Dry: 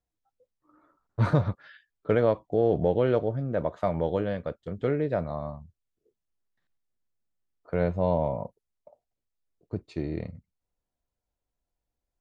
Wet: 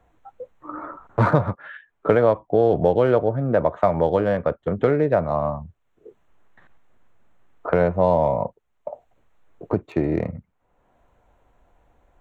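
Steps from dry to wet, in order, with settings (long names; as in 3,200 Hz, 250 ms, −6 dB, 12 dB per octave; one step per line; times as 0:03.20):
adaptive Wiener filter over 9 samples
parametric band 970 Hz +7 dB 2.1 octaves
multiband upward and downward compressor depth 70%
level +4 dB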